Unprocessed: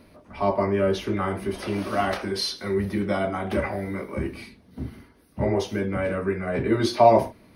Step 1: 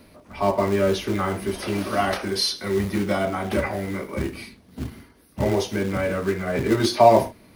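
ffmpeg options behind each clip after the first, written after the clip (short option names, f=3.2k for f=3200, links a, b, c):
-filter_complex "[0:a]highshelf=f=4.4k:g=6,acrossover=split=400[a][b];[a]acrusher=bits=3:mode=log:mix=0:aa=0.000001[c];[c][b]amix=inputs=2:normalize=0,volume=1.5dB"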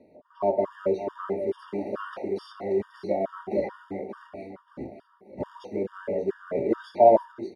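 -af "bandpass=f=490:t=q:w=1.2:csg=0,aecho=1:1:582|1164|1746|2328|2910:0.335|0.141|0.0591|0.0248|0.0104,afftfilt=real='re*gt(sin(2*PI*2.3*pts/sr)*(1-2*mod(floor(b*sr/1024/930),2)),0)':imag='im*gt(sin(2*PI*2.3*pts/sr)*(1-2*mod(floor(b*sr/1024/930),2)),0)':win_size=1024:overlap=0.75"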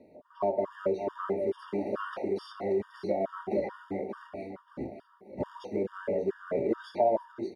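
-af "acompressor=threshold=-26dB:ratio=2.5"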